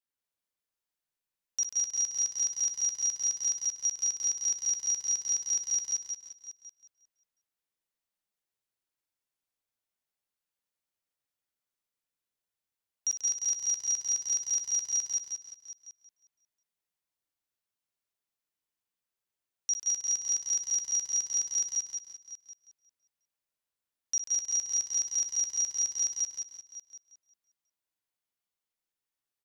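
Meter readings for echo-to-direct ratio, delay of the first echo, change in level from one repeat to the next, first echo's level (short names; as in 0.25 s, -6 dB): 1.5 dB, 60 ms, no steady repeat, -10.0 dB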